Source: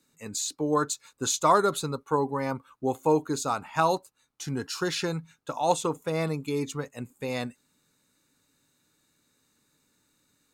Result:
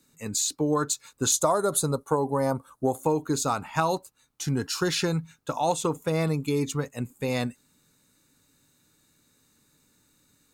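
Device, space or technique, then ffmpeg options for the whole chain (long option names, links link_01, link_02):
ASMR close-microphone chain: -filter_complex "[0:a]asettb=1/sr,asplit=3[link_01][link_02][link_03];[link_01]atrim=end=1.324[link_04];[link_02]atrim=start=1.32:end=3.04,asetpts=PTS-STARTPTS,afade=type=in:duration=0.004:curve=qsin,afade=type=out:start_time=1.716:duration=0.004:curve=qsin,equalizer=frequency=630:width_type=o:width=0.67:gain=8,equalizer=frequency=2500:width_type=o:width=0.67:gain=-11,equalizer=frequency=10000:width_type=o:width=0.67:gain=11[link_05];[link_03]atrim=start=3.036[link_06];[link_04][link_05]acrossfade=duration=0.004:curve1=hsin:curve2=qsin[link_07];[link_07][link_06]acrossfade=duration=0.004:curve1=qsin:curve2=hsin,lowshelf=frequency=200:gain=6.5,acompressor=threshold=-23dB:ratio=5,highshelf=frequency=7300:gain=5,volume=2.5dB"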